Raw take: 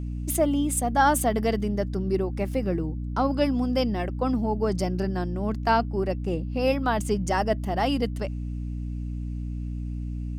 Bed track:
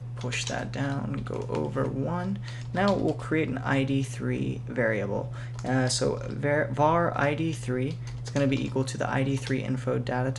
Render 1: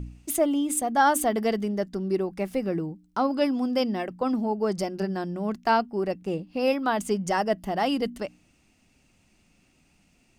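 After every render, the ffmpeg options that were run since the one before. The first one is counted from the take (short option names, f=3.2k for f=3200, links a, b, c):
-af "bandreject=f=60:t=h:w=4,bandreject=f=120:t=h:w=4,bandreject=f=180:t=h:w=4,bandreject=f=240:t=h:w=4,bandreject=f=300:t=h:w=4"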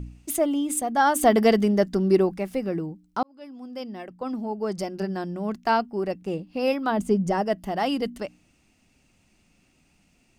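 -filter_complex "[0:a]asplit=3[a][b][c];[a]afade=t=out:st=6.9:d=0.02[d];[b]tiltshelf=f=740:g=7,afade=t=in:st=6.9:d=0.02,afade=t=out:st=7.42:d=0.02[e];[c]afade=t=in:st=7.42:d=0.02[f];[d][e][f]amix=inputs=3:normalize=0,asplit=4[g][h][i][j];[g]atrim=end=1.232[k];[h]atrim=start=1.228:end=2.372,asetpts=PTS-STARTPTS,volume=7dB[l];[i]atrim=start=2.368:end=3.23,asetpts=PTS-STARTPTS,afade=t=out:st=0.858:d=0.004:c=hsin[m];[j]atrim=start=3.23,asetpts=PTS-STARTPTS,afade=t=in:d=1.86[n];[k][l]acrossfade=d=0.004:c1=hsin:c2=hsin[o];[m][n]concat=n=2:v=0:a=1[p];[o][p]acrossfade=d=0.004:c1=hsin:c2=hsin"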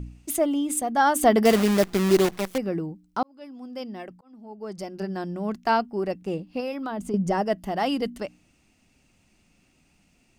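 -filter_complex "[0:a]asettb=1/sr,asplit=3[a][b][c];[a]atrim=end=1.454[d];[b]atrim=start=1.45:end=2.58,asetpts=PTS-STARTPTS,afade=t=in:d=0.004:c=qsin,afade=t=out:st=1.126:d=0.004:c=qsin,acrusher=bits=5:dc=4:mix=0:aa=0.000001[e];[c]atrim=start=2.576[f];[d][e]acrossfade=d=0.004:c1=hsin:c2=qsin[g];[g][f]acrossfade=d=0.004:c1=qsin:c2=hsin,asettb=1/sr,asplit=3[h][i][j];[h]atrim=end=6.604[k];[i]atrim=start=6.6:end=7.14,asetpts=PTS-STARTPTS,afade=t=in:d=0.004:c=qsin,afade=t=out:st=0.536:d=0.004:c=qsin,acompressor=threshold=-29dB:ratio=3:attack=3.2:release=140:knee=1:detection=peak[l];[j]atrim=start=7.136[m];[k][l]acrossfade=d=0.004:c1=hsin:c2=qsin[n];[n][m]acrossfade=d=0.004:c1=qsin:c2=hsin,asplit=2[o][p];[o]atrim=end=4.21,asetpts=PTS-STARTPTS,afade=t=out:st=4.206:d=0.004:c=hsin[q];[p]atrim=start=4.21,asetpts=PTS-STARTPTS,afade=t=in:d=1.09[r];[q][r]concat=n=2:v=0:a=1"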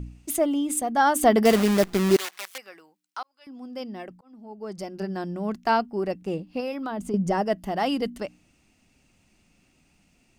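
-filter_complex "[0:a]asettb=1/sr,asplit=3[a][b][c];[a]atrim=end=2.164[d];[b]atrim=start=2.16:end=3.47,asetpts=PTS-STARTPTS,afade=t=in:d=0.004:c=qsin,afade=t=out:st=1.306:d=0.004:c=qsin,highpass=1.4k[e];[c]atrim=start=3.466[f];[d][e]acrossfade=d=0.004:c1=hsin:c2=qsin[g];[g][f]acrossfade=d=0.004:c1=qsin:c2=hsin"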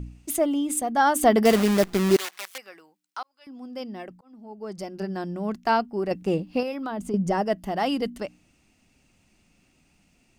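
-filter_complex "[0:a]asplit=3[a][b][c];[a]atrim=end=6.112[d];[b]atrim=start=6.108:end=6.632,asetpts=PTS-STARTPTS,volume=5dB[e];[c]atrim=start=6.628[f];[d][e]acrossfade=d=0.004:c1=hsin:c2=hsin[g];[g][f]acrossfade=d=0.004:c1=hsin:c2=hsin"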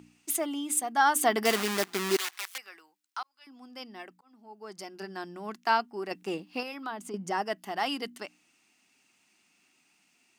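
-af "highpass=430,equalizer=f=550:w=2.1:g=-12"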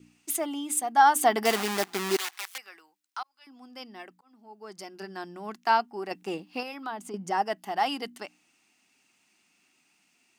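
-af "adynamicequalizer=threshold=0.00631:dfrequency=800:dqfactor=3.9:tfrequency=800:tqfactor=3.9:attack=5:release=100:ratio=0.375:range=3.5:mode=boostabove:tftype=bell"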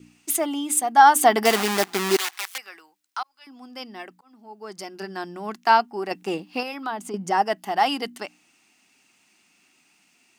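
-af "volume=6dB,alimiter=limit=-3dB:level=0:latency=1"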